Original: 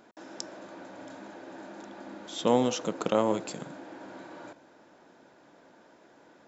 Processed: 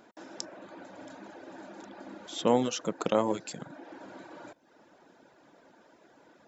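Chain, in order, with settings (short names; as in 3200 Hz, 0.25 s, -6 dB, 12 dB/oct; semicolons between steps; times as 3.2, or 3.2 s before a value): reverb removal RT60 0.69 s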